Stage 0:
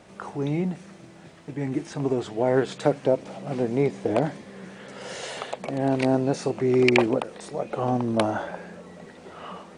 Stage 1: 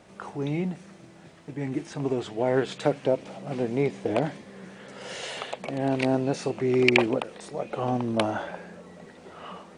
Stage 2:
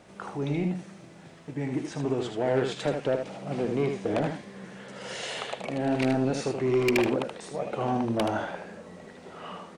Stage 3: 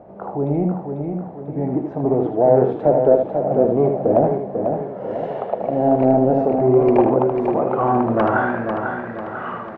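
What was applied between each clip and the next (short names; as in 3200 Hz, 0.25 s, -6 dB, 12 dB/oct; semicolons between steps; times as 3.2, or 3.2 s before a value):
dynamic EQ 2800 Hz, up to +5 dB, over -46 dBFS, Q 1.3; gain -2.5 dB
soft clip -18.5 dBFS, distortion -12 dB; on a send: echo 77 ms -6 dB
low-pass sweep 700 Hz -> 1500 Hz, 6.69–8.4; feedback echo 0.495 s, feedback 47%, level -6 dB; gain +7 dB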